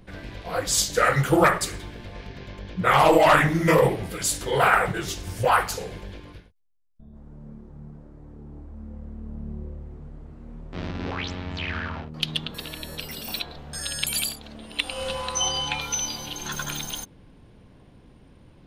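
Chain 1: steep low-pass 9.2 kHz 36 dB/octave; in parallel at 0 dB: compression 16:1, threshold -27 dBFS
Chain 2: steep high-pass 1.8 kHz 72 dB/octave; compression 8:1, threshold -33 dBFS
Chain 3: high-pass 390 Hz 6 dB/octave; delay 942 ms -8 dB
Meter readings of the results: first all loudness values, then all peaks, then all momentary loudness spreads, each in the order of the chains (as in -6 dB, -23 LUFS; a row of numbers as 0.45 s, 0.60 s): -21.5 LUFS, -36.5 LUFS, -24.5 LUFS; -2.5 dBFS, -16.0 dBFS, -5.0 dBFS; 21 LU, 13 LU, 18 LU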